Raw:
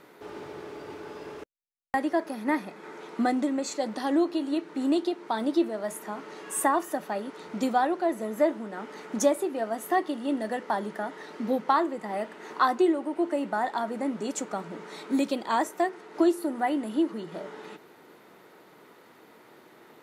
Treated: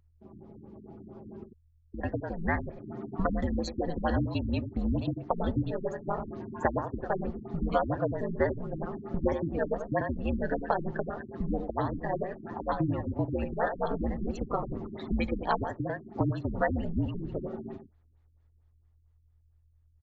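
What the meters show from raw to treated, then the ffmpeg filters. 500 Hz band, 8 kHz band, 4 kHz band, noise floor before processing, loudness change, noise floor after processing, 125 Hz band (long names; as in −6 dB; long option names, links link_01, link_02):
−3.0 dB, below −20 dB, −8.5 dB, −55 dBFS, −4.0 dB, −65 dBFS, +16.5 dB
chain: -filter_complex "[0:a]agate=range=-11dB:threshold=-49dB:ratio=16:detection=peak,aeval=exprs='val(0)*sin(2*PI*83*n/s)':channel_layout=same,afftdn=noise_reduction=21:noise_floor=-41,acrossover=split=110|1000|2900[link_01][link_02][link_03][link_04];[link_01]acompressor=threshold=-52dB:ratio=4[link_05];[link_02]acompressor=threshold=-39dB:ratio=4[link_06];[link_03]acompressor=threshold=-38dB:ratio=4[link_07];[link_04]acompressor=threshold=-55dB:ratio=4[link_08];[link_05][link_06][link_07][link_08]amix=inputs=4:normalize=0,asplit=2[link_09][link_10];[link_10]adelay=93.29,volume=-8dB,highshelf=frequency=4000:gain=-2.1[link_11];[link_09][link_11]amix=inputs=2:normalize=0,dynaudnorm=framelen=120:gausssize=31:maxgain=14dB,aeval=exprs='val(0)+0.00126*(sin(2*PI*50*n/s)+sin(2*PI*2*50*n/s)/2+sin(2*PI*3*50*n/s)/3+sin(2*PI*4*50*n/s)/4+sin(2*PI*5*50*n/s)/5)':channel_layout=same,adynamicequalizer=threshold=0.002:dfrequency=5000:dqfactor=2.2:tfrequency=5000:tqfactor=2.2:attack=5:release=100:ratio=0.375:range=1.5:mode=boostabove:tftype=bell,afreqshift=-130,afftfilt=real='re*lt(b*sr/1024,330*pow(7900/330,0.5+0.5*sin(2*PI*4.4*pts/sr)))':imag='im*lt(b*sr/1024,330*pow(7900/330,0.5+0.5*sin(2*PI*4.4*pts/sr)))':win_size=1024:overlap=0.75,volume=-4.5dB"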